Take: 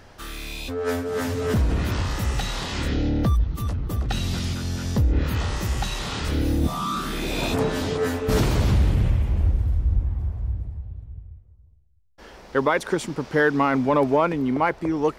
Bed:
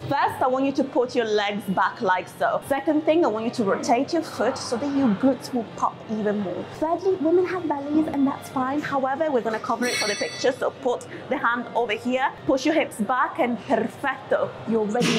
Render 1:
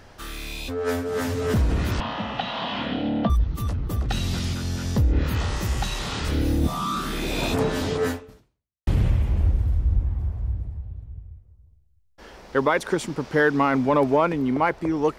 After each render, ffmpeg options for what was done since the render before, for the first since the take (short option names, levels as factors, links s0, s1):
-filter_complex "[0:a]asettb=1/sr,asplit=3[s0][s1][s2];[s0]atrim=end=2.004[s3];[s1]atrim=start=2:end=3.3,asetpts=PTS-STARTPTS,afade=t=in:d=0.004:c=qsin,afade=t=out:st=1.296:d=0.004:c=qsin,highpass=200,equalizer=f=220:t=q:w=4:g=8,equalizer=f=380:t=q:w=4:g=-9,equalizer=f=680:t=q:w=4:g=10,equalizer=f=1000:t=q:w=4:g=6,equalizer=f=2100:t=q:w=4:g=-3,equalizer=f=3100:t=q:w=4:g=7,lowpass=f=3600:w=0.5412,lowpass=f=3600:w=1.3066[s4];[s2]atrim=start=3.296[s5];[s3][s4]acrossfade=d=0.004:c1=hsin:c2=qsin[s6];[s6][s5]acrossfade=d=0.004:c1=qsin:c2=hsin,asplit=2[s7][s8];[s7]atrim=end=8.87,asetpts=PTS-STARTPTS,afade=t=out:st=8.11:d=0.76:c=exp[s9];[s8]atrim=start=8.87,asetpts=PTS-STARTPTS,afade=t=in:d=0.004:c=hsin[s10];[s9][s10]concat=n=2:v=0:a=1"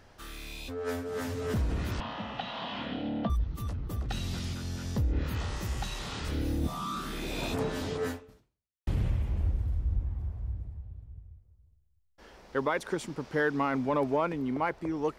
-af "volume=0.376"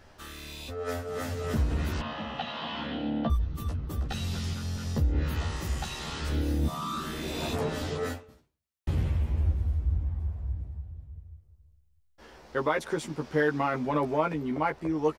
-filter_complex "[0:a]asplit=2[s0][s1];[s1]adelay=13,volume=0.75[s2];[s0][s2]amix=inputs=2:normalize=0"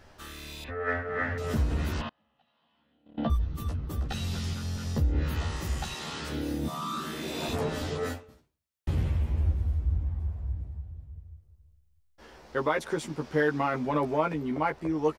-filter_complex "[0:a]asettb=1/sr,asplit=3[s0][s1][s2];[s0]atrim=end=0.644[s3];[s1]atrim=start=0.64:end=1.38,asetpts=PTS-STARTPTS,afade=t=in:d=0.004:c=qsin,afade=t=out:st=0.736:d=0.004:c=qsin,lowpass=f=1800:t=q:w=5.5[s4];[s2]atrim=start=1.376[s5];[s3][s4]acrossfade=d=0.004:c1=hsin:c2=qsin[s6];[s6][s5]acrossfade=d=0.004:c1=qsin:c2=hsin,asettb=1/sr,asplit=3[s7][s8][s9];[s7]atrim=end=2.094[s10];[s8]atrim=start=2.09:end=3.18,asetpts=PTS-STARTPTS,afade=t=in:d=0.004:c=qsin,afade=t=out:st=1.086:d=0.004:c=qsin,agate=range=0.0158:threshold=0.0447:ratio=16:release=100:detection=peak[s11];[s9]atrim=start=3.176[s12];[s10][s11]acrossfade=d=0.004:c1=hsin:c2=qsin[s13];[s13][s12]acrossfade=d=0.004:c1=qsin:c2=hsin,asettb=1/sr,asplit=3[s14][s15][s16];[s14]atrim=end=5.944[s17];[s15]atrim=start=5.94:end=7.49,asetpts=PTS-STARTPTS,afade=t=in:d=0.004:c=qsin,afade=t=out:st=1.546:d=0.004:c=qsin,highpass=130[s18];[s16]atrim=start=7.486[s19];[s17][s18]acrossfade=d=0.004:c1=hsin:c2=qsin[s20];[s20][s19]acrossfade=d=0.004:c1=qsin:c2=hsin"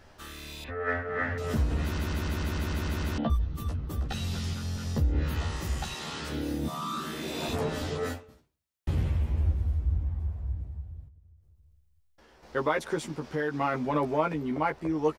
-filter_complex "[0:a]asettb=1/sr,asplit=3[s0][s1][s2];[s0]atrim=end=11.084[s3];[s1]atrim=start=11.08:end=12.43,asetpts=PTS-STARTPTS,afade=t=in:d=0.004:c=qsin,afade=t=out:st=1.346:d=0.004:c=qsin,acompressor=threshold=0.00178:ratio=4:attack=3.2:release=140:knee=1:detection=peak[s4];[s2]atrim=start=12.426[s5];[s3][s4]acrossfade=d=0.004:c1=hsin:c2=qsin[s6];[s6][s5]acrossfade=d=0.004:c1=qsin:c2=hsin,asettb=1/sr,asplit=3[s7][s8][s9];[s7]atrim=end=13.024[s10];[s8]atrim=start=13.02:end=13.61,asetpts=PTS-STARTPTS,afade=t=in:d=0.004:c=qsin,afade=t=out:st=0.586:d=0.004:c=qsin,acompressor=threshold=0.0355:ratio=2:attack=3.2:release=140:knee=1:detection=peak[s11];[s9]atrim=start=13.606[s12];[s10][s11]acrossfade=d=0.004:c1=hsin:c2=qsin[s13];[s13][s12]acrossfade=d=0.004:c1=qsin:c2=hsin,asplit=10[s14][s15][s16][s17][s18][s19][s20][s21][s22][s23];[s14]atrim=end=1.982[s24];[s15]atrim=start=1.828:end=1.982[s25];[s16]atrim=start=1.828:end=1.982[s26];[s17]atrim=start=1.828:end=1.982[s27];[s18]atrim=start=1.828:end=1.982[s28];[s19]atrim=start=1.828:end=1.982[s29];[s20]atrim=start=1.828:end=1.982[s30];[s21]atrim=start=1.828:end=1.982[s31];[s22]atrim=start=1.828:end=1.982[s32];[s23]atrim=start=3.178[s33];[s24][s25]acrossfade=d=0.004:c1=hsin:c2=hsin[s34];[s34][s26]acrossfade=d=0.004:c1=hsin:c2=hsin[s35];[s35][s27]acrossfade=d=0.004:c1=hsin:c2=hsin[s36];[s36][s28]acrossfade=d=0.004:c1=hsin:c2=hsin[s37];[s37][s29]acrossfade=d=0.004:c1=hsin:c2=hsin[s38];[s38][s30]acrossfade=d=0.004:c1=hsin:c2=hsin[s39];[s39][s31]acrossfade=d=0.004:c1=hsin:c2=hsin[s40];[s40][s32]acrossfade=d=0.004:c1=hsin:c2=hsin[s41];[s41][s33]acrossfade=d=0.004:c1=hsin:c2=hsin"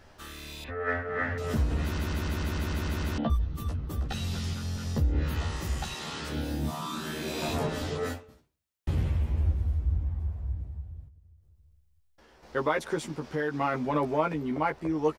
-filter_complex "[0:a]asettb=1/sr,asplit=3[s0][s1][s2];[s0]atrim=end=6.344[s3];[s1]atrim=start=6.34:end=7.67,asetpts=PTS-STARTPTS,afade=t=in:d=0.004:c=qsin,afade=t=out:st=1.326:d=0.004:c=qsin,asplit=2[s4][s5];[s5]adelay=26,volume=0.668[s6];[s4][s6]amix=inputs=2:normalize=0,atrim=end_sample=58653[s7];[s2]atrim=start=7.666[s8];[s3][s7]acrossfade=d=0.004:c1=hsin:c2=qsin[s9];[s9][s8]acrossfade=d=0.004:c1=qsin:c2=hsin"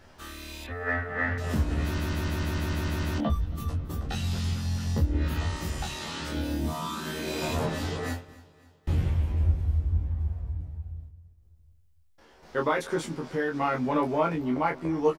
-filter_complex "[0:a]asplit=2[s0][s1];[s1]adelay=24,volume=0.631[s2];[s0][s2]amix=inputs=2:normalize=0,aecho=1:1:275|550|825|1100:0.0708|0.0389|0.0214|0.0118"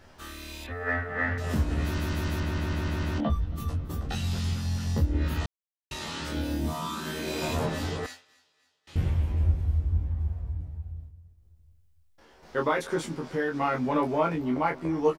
-filter_complex "[0:a]asettb=1/sr,asplit=3[s0][s1][s2];[s0]atrim=end=2.404[s3];[s1]atrim=start=2.4:end=3.56,asetpts=PTS-STARTPTS,afade=t=in:d=0.004:c=qsin,afade=t=out:st=1.156:d=0.004:c=qsin,highshelf=f=6300:g=-9[s4];[s2]atrim=start=3.556[s5];[s3][s4]acrossfade=d=0.004:c1=hsin:c2=qsin[s6];[s6][s5]acrossfade=d=0.004:c1=qsin:c2=hsin,asettb=1/sr,asplit=3[s7][s8][s9];[s7]atrim=end=8.064[s10];[s8]atrim=start=8.06:end=8.96,asetpts=PTS-STARTPTS,afade=t=in:d=0.004:c=qsin,afade=t=out:st=0.896:d=0.004:c=qsin,bandpass=f=4600:t=q:w=0.87[s11];[s9]atrim=start=8.956[s12];[s10][s11]acrossfade=d=0.004:c1=hsin:c2=qsin[s13];[s13][s12]acrossfade=d=0.004:c1=qsin:c2=hsin,asplit=3[s14][s15][s16];[s14]atrim=end=5.46,asetpts=PTS-STARTPTS,afade=t=out:st=5.456:d=0.004:c=hsin[s17];[s15]atrim=start=5.46:end=5.91,asetpts=PTS-STARTPTS,volume=0[s18];[s16]atrim=start=5.91,asetpts=PTS-STARTPTS,afade=t=in:d=0.004:c=hsin[s19];[s17][s18][s19]concat=n=3:v=0:a=1"